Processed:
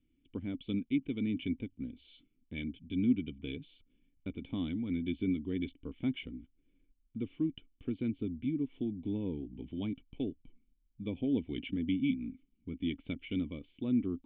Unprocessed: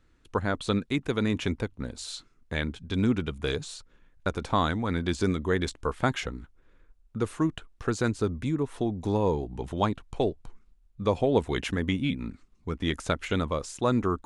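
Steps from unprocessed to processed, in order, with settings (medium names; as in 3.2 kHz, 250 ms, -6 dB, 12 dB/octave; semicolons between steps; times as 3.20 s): cascade formant filter i; treble shelf 3.1 kHz +10.5 dB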